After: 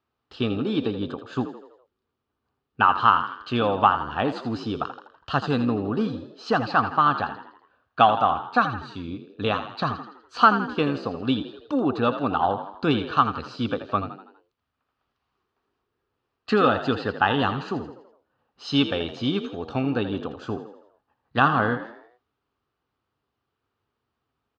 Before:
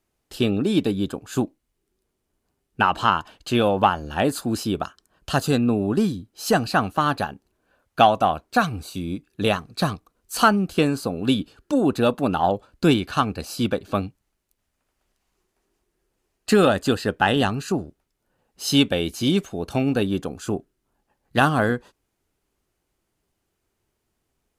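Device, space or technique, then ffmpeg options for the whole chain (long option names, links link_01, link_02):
frequency-shifting delay pedal into a guitar cabinet: -filter_complex "[0:a]highshelf=frequency=5100:gain=-8,asplit=6[link_01][link_02][link_03][link_04][link_05][link_06];[link_02]adelay=82,afreqshift=50,volume=-11dB[link_07];[link_03]adelay=164,afreqshift=100,volume=-17.4dB[link_08];[link_04]adelay=246,afreqshift=150,volume=-23.8dB[link_09];[link_05]adelay=328,afreqshift=200,volume=-30.1dB[link_10];[link_06]adelay=410,afreqshift=250,volume=-36.5dB[link_11];[link_01][link_07][link_08][link_09][link_10][link_11]amix=inputs=6:normalize=0,highpass=89,equalizer=frequency=180:width_type=q:width=4:gain=-9,equalizer=frequency=350:width_type=q:width=4:gain=-6,equalizer=frequency=600:width_type=q:width=4:gain=-5,equalizer=frequency=1200:width_type=q:width=4:gain=7,equalizer=frequency=2100:width_type=q:width=4:gain=-5,lowpass=frequency=4600:width=0.5412,lowpass=frequency=4600:width=1.3066,volume=-1dB"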